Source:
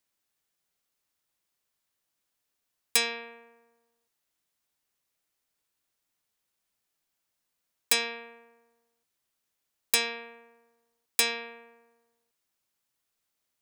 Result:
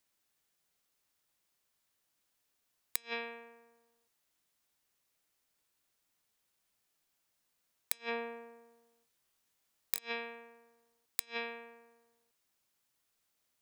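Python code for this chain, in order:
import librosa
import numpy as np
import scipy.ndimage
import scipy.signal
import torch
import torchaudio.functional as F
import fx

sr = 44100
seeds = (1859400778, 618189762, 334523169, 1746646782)

y = fx.gate_flip(x, sr, shuts_db=-16.0, range_db=-36)
y = fx.room_flutter(y, sr, wall_m=3.7, rt60_s=0.2, at=(7.99, 9.99))
y = y * librosa.db_to_amplitude(1.5)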